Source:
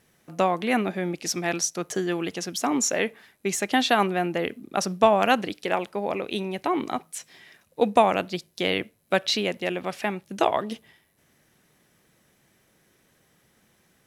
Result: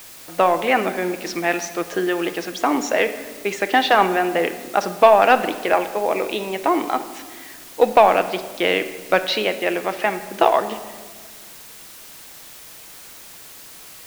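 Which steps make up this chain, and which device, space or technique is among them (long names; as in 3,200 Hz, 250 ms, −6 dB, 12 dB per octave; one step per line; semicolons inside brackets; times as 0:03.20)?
tape answering machine (band-pass filter 360–2,900 Hz; soft clipping −9.5 dBFS, distortion −19 dB; tape wow and flutter; white noise bed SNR 20 dB)
rectangular room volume 1,600 cubic metres, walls mixed, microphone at 0.61 metres
level +8 dB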